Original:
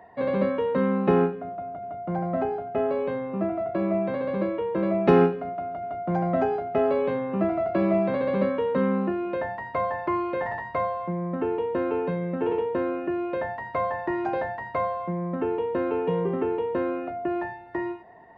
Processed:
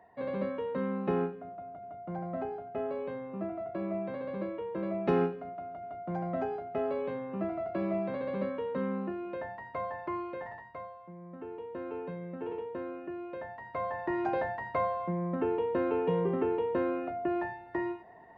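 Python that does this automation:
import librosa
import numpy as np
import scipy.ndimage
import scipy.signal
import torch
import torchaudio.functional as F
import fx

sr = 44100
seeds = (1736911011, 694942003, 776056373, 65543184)

y = fx.gain(x, sr, db=fx.line((10.2, -9.5), (11.03, -19.5), (11.97, -12.0), (13.48, -12.0), (14.21, -3.5)))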